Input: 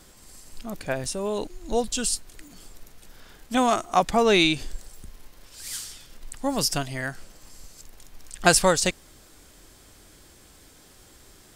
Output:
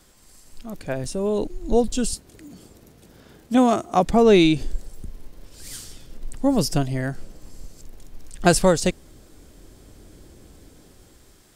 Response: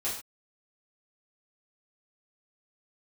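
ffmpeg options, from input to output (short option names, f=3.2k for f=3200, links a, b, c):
-filter_complex "[0:a]asettb=1/sr,asplit=3[a][b][c];[a]atrim=end=2.134[d];[b]atrim=start=2.13:end=4.06,asetpts=PTS-STARTPTS,afade=t=in:d=0.004:c=qsin,afade=t=out:st=1.926:d=0.004:c=qsin,highpass=80[e];[c]atrim=start=4.056[f];[d][e]acrossfade=d=0.004:c1=hsin:c2=qsin[g];[g][f]acrossfade=d=0.004:c1=qsin:c2=hsin,acrossover=split=570|3700[h][i][j];[h]dynaudnorm=f=400:g=5:m=12.5dB[k];[k][i][j]amix=inputs=3:normalize=0,volume=-3.5dB"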